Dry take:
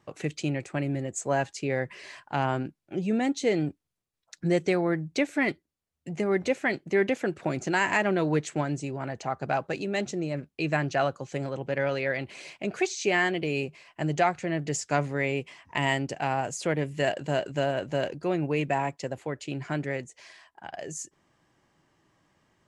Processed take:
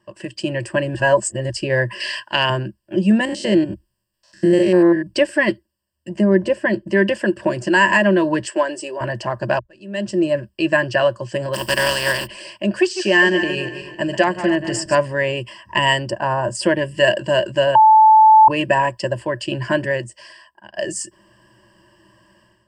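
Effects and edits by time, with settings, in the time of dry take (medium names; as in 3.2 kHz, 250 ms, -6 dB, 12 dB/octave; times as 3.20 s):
0.95–1.50 s: reverse
2.00–2.50 s: frequency weighting D
3.25–5.07 s: spectrogram pixelated in time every 100 ms
6.19–6.89 s: tilt shelf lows +4.5 dB
8.45–9.01 s: high-pass 310 Hz 24 dB/octave
9.59–10.26 s: fade in quadratic
11.53–12.26 s: spectral contrast reduction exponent 0.37
12.78–14.95 s: backward echo that repeats 130 ms, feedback 57%, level -10 dB
16.10–16.55 s: resonant high shelf 1.7 kHz -8.5 dB, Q 1.5
17.75–18.48 s: bleep 873 Hz -12 dBFS
19.73–20.76 s: fade out, to -16.5 dB
whole clip: rippled EQ curve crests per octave 1.3, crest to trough 17 dB; level rider gain up to 11.5 dB; trim -1.5 dB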